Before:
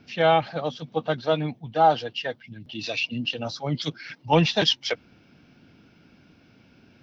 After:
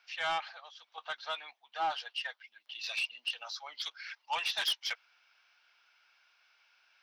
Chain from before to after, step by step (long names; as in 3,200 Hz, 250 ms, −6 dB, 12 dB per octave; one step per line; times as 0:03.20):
high-pass filter 970 Hz 24 dB per octave
0:00.49–0:00.98: downward compressor 5 to 1, threshold −44 dBFS, peak gain reduction 9.5 dB
soft clipping −21 dBFS, distortion −12 dB
level −4.5 dB